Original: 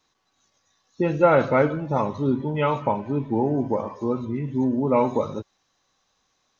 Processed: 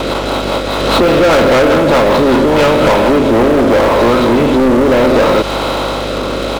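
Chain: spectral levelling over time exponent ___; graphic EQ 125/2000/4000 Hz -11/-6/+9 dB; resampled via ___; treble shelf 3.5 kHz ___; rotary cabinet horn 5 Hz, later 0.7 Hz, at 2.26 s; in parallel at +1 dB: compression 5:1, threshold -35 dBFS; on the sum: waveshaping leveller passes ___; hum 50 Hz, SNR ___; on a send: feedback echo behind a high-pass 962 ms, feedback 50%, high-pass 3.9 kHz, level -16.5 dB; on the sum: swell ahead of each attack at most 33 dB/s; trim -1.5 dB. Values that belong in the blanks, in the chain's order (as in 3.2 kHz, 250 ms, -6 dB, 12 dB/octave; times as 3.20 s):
0.4, 11.025 kHz, +2.5 dB, 5, 16 dB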